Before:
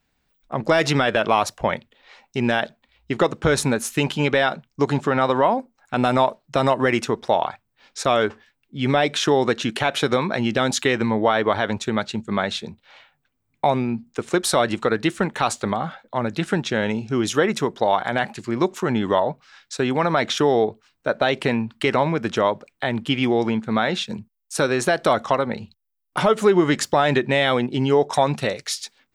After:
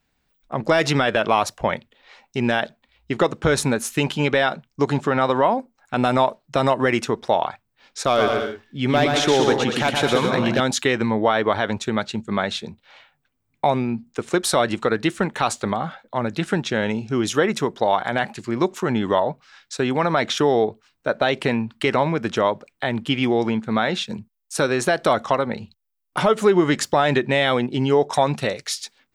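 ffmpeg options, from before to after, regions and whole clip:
ffmpeg -i in.wav -filter_complex "[0:a]asettb=1/sr,asplit=3[link_01][link_02][link_03];[link_01]atrim=end=8.064[link_04];[link_02]atrim=start=8.06:end=10.6,asetpts=PTS-STARTPTS,afade=type=in:duration=0.004:curve=qsin,afade=type=out:start_time=2.536:duration=0.004:curve=qsin,volume=9.5dB,asoftclip=hard,volume=-9.5dB,aecho=1:1:120|198|248.7|281.7|303.1:0.631|0.398|0.251|0.158|0.1,atrim=end_sample=112014[link_05];[link_03]atrim=start=10.596[link_06];[link_04][link_05]acrossfade=duration=0.004:curve1=hsin:curve2=qsin[link_07];[link_07][link_06]acrossfade=duration=0.004:curve1=qsin:curve2=hsin" out.wav

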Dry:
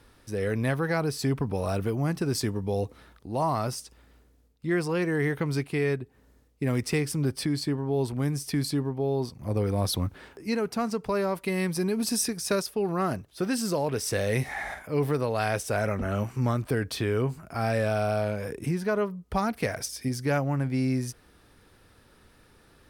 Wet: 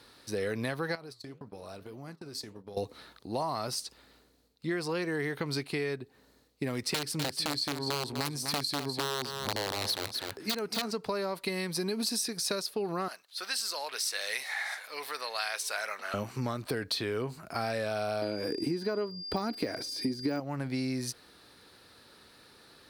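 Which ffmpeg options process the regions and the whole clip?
ffmpeg -i in.wav -filter_complex "[0:a]asettb=1/sr,asplit=3[link_01][link_02][link_03];[link_01]atrim=end=0.954[link_04];[link_02]atrim=start=0.95:end=2.77,asetpts=PTS-STARTPTS,afade=type=in:duration=0.004:curve=qsin,afade=type=out:start_time=1.816:duration=0.004:curve=qsin,agate=range=-34dB:threshold=-32dB:ratio=16:release=100:detection=peak,acompressor=threshold=-35dB:ratio=8:attack=3.2:release=140:knee=1:detection=peak,flanger=delay=4.9:depth=9.6:regen=-81:speed=1.8:shape=triangular[link_05];[link_03]atrim=start=2.766[link_06];[link_04][link_05]acrossfade=duration=0.004:curve1=hsin:curve2=qsin[link_07];[link_07][link_06]acrossfade=duration=0.004:curve1=qsin:curve2=hsin,asettb=1/sr,asplit=3[link_08][link_09][link_10];[link_08]atrim=end=6.944[link_11];[link_09]atrim=start=6.94:end=10.94,asetpts=PTS-STARTPTS,afade=type=in:duration=0.004:curve=qsin,afade=type=out:start_time=3.996:duration=0.004:curve=qsin,aeval=exprs='(mod(10*val(0)+1,2)-1)/10':channel_layout=same,aecho=1:1:250:0.299,atrim=end_sample=176400[link_12];[link_10]atrim=start=10.936[link_13];[link_11][link_12]acrossfade=duration=0.004:curve1=hsin:curve2=qsin[link_14];[link_14][link_13]acrossfade=duration=0.004:curve1=qsin:curve2=hsin,asettb=1/sr,asplit=3[link_15][link_16][link_17];[link_15]atrim=end=13.084[link_18];[link_16]atrim=start=13.08:end=16.14,asetpts=PTS-STARTPTS,afade=type=in:duration=0.004:curve=qsin,afade=type=out:start_time=3.056:duration=0.004:curve=qsin,highpass=1200,aecho=1:1:656:0.0794,atrim=end_sample=134946[link_19];[link_17]atrim=start=16.136[link_20];[link_18][link_19]acrossfade=duration=0.004:curve1=hsin:curve2=qsin[link_21];[link_21][link_20]acrossfade=duration=0.004:curve1=qsin:curve2=hsin,asettb=1/sr,asplit=3[link_22][link_23][link_24];[link_22]atrim=end=18.224[link_25];[link_23]atrim=start=18.22:end=20.4,asetpts=PTS-STARTPTS,afade=type=in:duration=0.004:curve=qsin,afade=type=out:start_time=2.176:duration=0.004:curve=qsin,deesser=0.95,equalizer=frequency=310:width_type=o:width=0.78:gain=14.5,aeval=exprs='val(0)+0.00631*sin(2*PI*4800*n/s)':channel_layout=same[link_26];[link_24]atrim=start=20.396[link_27];[link_25][link_26]acrossfade=duration=0.004:curve1=hsin:curve2=qsin[link_28];[link_28][link_27]acrossfade=duration=0.004:curve1=qsin:curve2=hsin,highpass=frequency=280:poles=1,equalizer=frequency=4200:width=3.5:gain=11.5,acompressor=threshold=-31dB:ratio=6,volume=2dB" out.wav

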